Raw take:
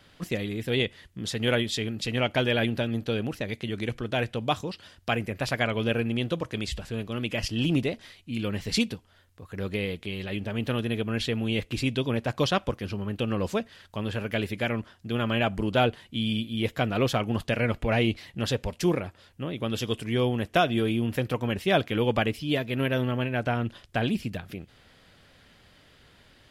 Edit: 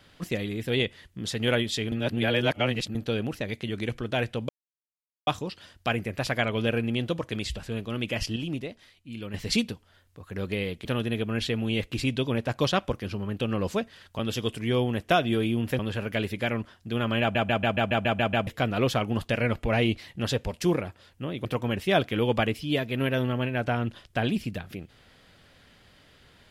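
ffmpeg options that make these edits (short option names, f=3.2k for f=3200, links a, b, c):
-filter_complex "[0:a]asplit=19[a][b][c][d][e][f][g][h][i][j][k][l][m][n][o][p][q][r][s];[a]atrim=end=1.922[t];[b]atrim=start=1.918:end=2.952,asetpts=PTS-STARTPTS,areverse[u];[c]atrim=start=2.948:end=4.49,asetpts=PTS-STARTPTS,afade=t=out:st=1.538:d=0.004:c=hsin,apad=pad_dur=0.78[v];[d]atrim=start=4.49:end=7.582,asetpts=PTS-STARTPTS,afade=t=in:d=0.004:c=hsin[w];[e]atrim=start=7.578:end=8.562,asetpts=PTS-STARTPTS,volume=-7.5dB[x];[f]atrim=start=8.558:end=10.072[y];[g]atrim=start=10.638:end=13.982[z];[h]atrim=start=19.638:end=21.242[aa];[i]atrim=start=13.978:end=15.542[ab];[j]atrim=start=15.398:end=15.542[ac];[k]atrim=start=15.398:end=15.542[ad];[l]atrim=start=15.398:end=15.542[ae];[m]atrim=start=15.398:end=15.542[af];[n]atrim=start=15.398:end=15.542[ag];[o]atrim=start=15.398:end=15.542[ah];[p]atrim=start=15.398:end=15.542[ai];[q]atrim=start=15.398:end=15.542[aj];[r]atrim=start=16.658:end=19.642[ak];[s]atrim=start=21.238[al];[t][u]acrossfade=d=0.004:c1=hsin:c2=hsin[am];[v][w]concat=n=2:v=0:a=1[an];[am][an]acrossfade=d=0.004:c1=hsin:c2=hsin[ao];[ao][x]acrossfade=d=0.004:c1=hsin:c2=hsin[ap];[ap][y]acrossfade=d=0.004:c1=hsin:c2=hsin[aq];[aq][z]acrossfade=d=0.004:c1=hsin:c2=hsin[ar];[ar][aa]acrossfade=d=0.004:c1=hsin:c2=hsin[as];[as][ab]acrossfade=d=0.004:c1=hsin:c2=hsin[at];[at][ac]acrossfade=d=0.004:c1=hsin:c2=hsin[au];[au][ad]acrossfade=d=0.004:c1=hsin:c2=hsin[av];[av][ae]acrossfade=d=0.004:c1=hsin:c2=hsin[aw];[aw][af]acrossfade=d=0.004:c1=hsin:c2=hsin[ax];[ax][ag]acrossfade=d=0.004:c1=hsin:c2=hsin[ay];[ay][ah]acrossfade=d=0.004:c1=hsin:c2=hsin[az];[az][ai]acrossfade=d=0.004:c1=hsin:c2=hsin[ba];[ba][aj]acrossfade=d=0.004:c1=hsin:c2=hsin[bb];[bb][ak]acrossfade=d=0.004:c1=hsin:c2=hsin[bc];[bc][al]acrossfade=d=0.004:c1=hsin:c2=hsin"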